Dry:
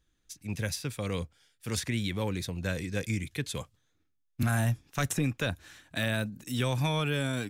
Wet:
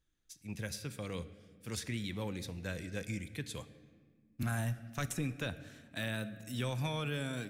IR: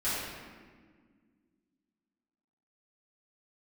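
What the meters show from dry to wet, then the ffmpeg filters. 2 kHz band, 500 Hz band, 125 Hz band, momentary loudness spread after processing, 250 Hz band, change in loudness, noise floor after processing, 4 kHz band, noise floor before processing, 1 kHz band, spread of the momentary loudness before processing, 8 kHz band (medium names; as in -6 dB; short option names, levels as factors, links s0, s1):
-7.5 dB, -7.5 dB, -7.5 dB, 12 LU, -7.0 dB, -7.5 dB, -70 dBFS, -7.5 dB, -75 dBFS, -7.5 dB, 12 LU, -7.5 dB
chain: -filter_complex "[0:a]asplit=2[s0][s1];[s1]asuperstop=centerf=970:order=4:qfactor=3.5[s2];[1:a]atrim=start_sample=2205[s3];[s2][s3]afir=irnorm=-1:irlink=0,volume=0.1[s4];[s0][s4]amix=inputs=2:normalize=0,volume=0.398"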